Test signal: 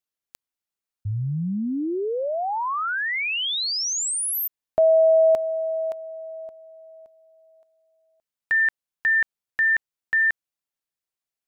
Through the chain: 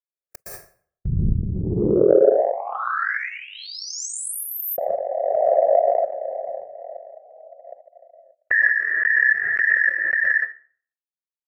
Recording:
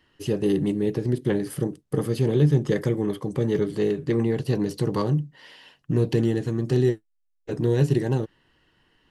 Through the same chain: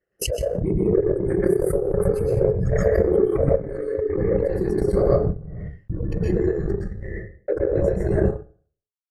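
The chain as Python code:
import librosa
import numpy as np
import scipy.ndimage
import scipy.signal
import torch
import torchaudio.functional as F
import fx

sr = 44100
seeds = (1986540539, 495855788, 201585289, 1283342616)

y = fx.peak_eq(x, sr, hz=380.0, db=13.5, octaves=2.5)
y = fx.over_compress(y, sr, threshold_db=-12.0, ratio=-0.5)
y = fx.dynamic_eq(y, sr, hz=140.0, q=3.4, threshold_db=-30.0, ratio=4.0, max_db=4)
y = fx.whisperise(y, sr, seeds[0])
y = fx.noise_reduce_blind(y, sr, reduce_db=22)
y = fx.gate_hold(y, sr, open_db=-34.0, close_db=-38.0, hold_ms=68.0, range_db=-28, attack_ms=5.4, release_ms=43.0)
y = fx.fixed_phaser(y, sr, hz=950.0, stages=6)
y = fx.rev_plate(y, sr, seeds[1], rt60_s=0.5, hf_ratio=0.75, predelay_ms=105, drr_db=-4.0)
y = fx.transient(y, sr, attack_db=7, sustain_db=-9)
y = fx.pre_swell(y, sr, db_per_s=23.0)
y = F.gain(torch.from_numpy(y), -11.5).numpy()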